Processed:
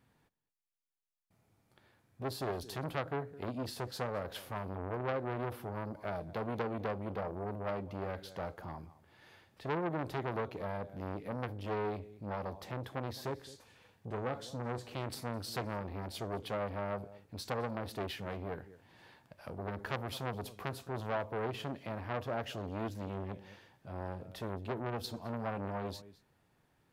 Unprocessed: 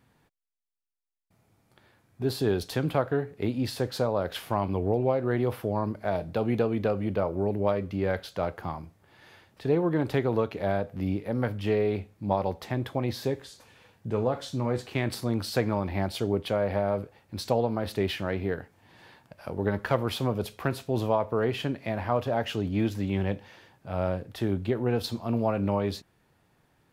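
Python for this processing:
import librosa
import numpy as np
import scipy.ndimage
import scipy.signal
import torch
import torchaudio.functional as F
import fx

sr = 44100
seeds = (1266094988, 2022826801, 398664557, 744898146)

p1 = fx.dynamic_eq(x, sr, hz=2400.0, q=0.87, threshold_db=-45.0, ratio=4.0, max_db=-4)
p2 = p1 + fx.echo_single(p1, sr, ms=214, db=-21.0, dry=0)
p3 = fx.transformer_sat(p2, sr, knee_hz=1700.0)
y = F.gain(torch.from_numpy(p3), -6.0).numpy()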